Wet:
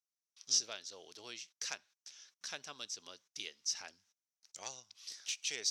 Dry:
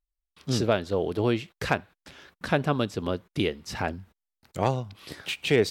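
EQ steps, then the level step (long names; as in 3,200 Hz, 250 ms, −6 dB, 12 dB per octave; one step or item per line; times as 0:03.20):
resonant band-pass 5,900 Hz, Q 6.1
+9.0 dB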